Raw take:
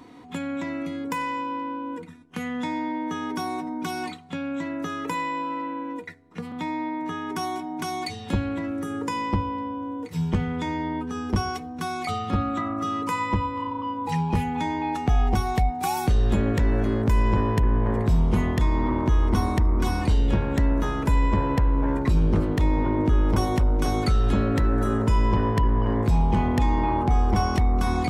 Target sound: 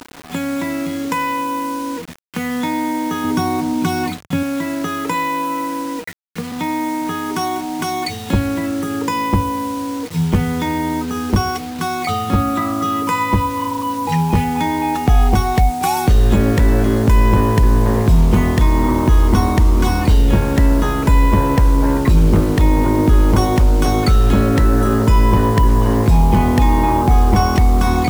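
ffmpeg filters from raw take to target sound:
-filter_complex "[0:a]acrusher=bits=6:mix=0:aa=0.000001,asettb=1/sr,asplit=3[a][b][c];[a]atrim=end=3.244[d];[b]atrim=start=3.24:end=4.43,asetpts=PTS-STARTPTS,afade=t=in:d=0.004:c=qsin,afade=t=out:st=1.186:d=0.004:c=qsin,equalizer=f=97:t=o:w=2.2:g=12[e];[c]atrim=start=4.426[f];[d][e]acrossfade=d=0.004:c1=hsin:c2=qsin[g];[g][f]acrossfade=d=0.004:c1=qsin:c2=hsin,volume=8.5dB"

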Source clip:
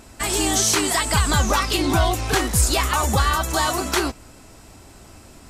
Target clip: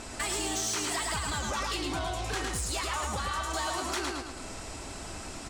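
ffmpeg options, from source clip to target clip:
-filter_complex "[0:a]lowpass=f=9.6k:w=0.5412,lowpass=f=9.6k:w=1.3066,asplit=2[a][b];[b]aecho=0:1:109|218|327|436:0.596|0.155|0.0403|0.0105[c];[a][c]amix=inputs=2:normalize=0,acompressor=threshold=-35dB:ratio=4,equalizer=f=100:w=0.31:g=-6,asoftclip=type=tanh:threshold=-31.5dB,volume=6dB"

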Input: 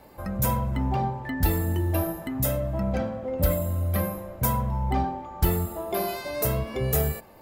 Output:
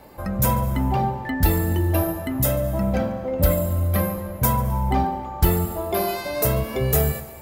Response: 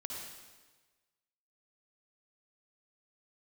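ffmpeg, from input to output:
-filter_complex "[0:a]asplit=2[a][b];[1:a]atrim=start_sample=2205,adelay=143[c];[b][c]afir=irnorm=-1:irlink=0,volume=-14.5dB[d];[a][d]amix=inputs=2:normalize=0,volume=4.5dB"

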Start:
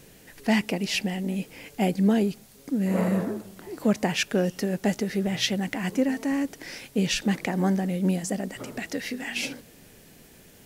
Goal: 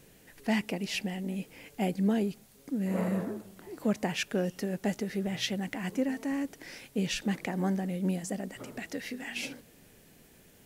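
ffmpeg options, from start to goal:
-af "equalizer=f=5.1k:w=1.5:g=-2,volume=-6dB"

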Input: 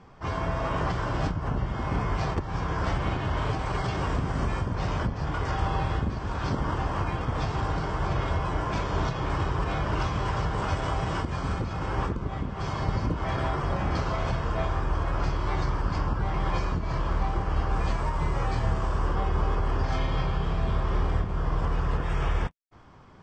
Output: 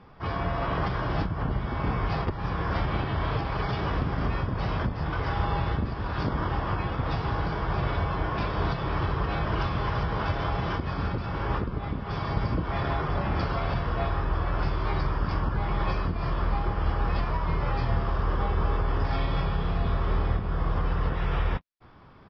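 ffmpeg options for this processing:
-af "aresample=11025,aresample=44100,asetrate=45938,aresample=44100"

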